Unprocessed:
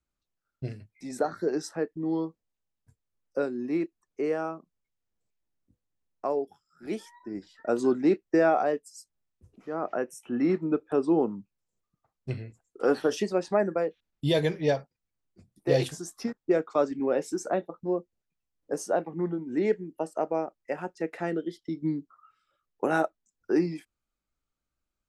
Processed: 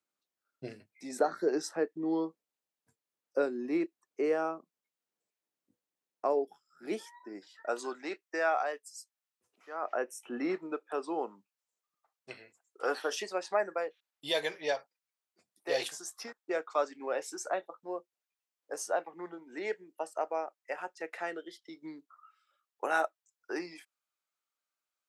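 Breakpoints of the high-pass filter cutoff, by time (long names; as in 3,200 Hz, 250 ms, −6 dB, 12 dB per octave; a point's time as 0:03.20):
0:06.92 310 Hz
0:07.93 950 Hz
0:09.74 950 Hz
0:10.18 350 Hz
0:10.82 750 Hz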